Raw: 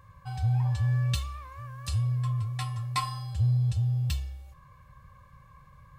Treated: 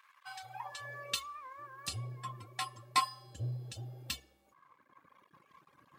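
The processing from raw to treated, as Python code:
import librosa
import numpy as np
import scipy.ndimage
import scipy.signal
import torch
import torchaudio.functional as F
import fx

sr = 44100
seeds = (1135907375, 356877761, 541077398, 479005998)

y = np.sign(x) * np.maximum(np.abs(x) - 10.0 ** (-57.5 / 20.0), 0.0)
y = fx.dereverb_blind(y, sr, rt60_s=1.9)
y = fx.filter_sweep_highpass(y, sr, from_hz=1600.0, to_hz=270.0, start_s=0.11, end_s=1.53, q=1.4)
y = y * 10.0 ** (1.0 / 20.0)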